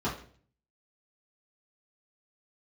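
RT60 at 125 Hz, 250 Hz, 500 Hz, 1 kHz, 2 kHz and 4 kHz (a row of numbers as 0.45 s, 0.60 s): 0.75 s, 0.60 s, 0.55 s, 0.40 s, 0.45 s, 0.45 s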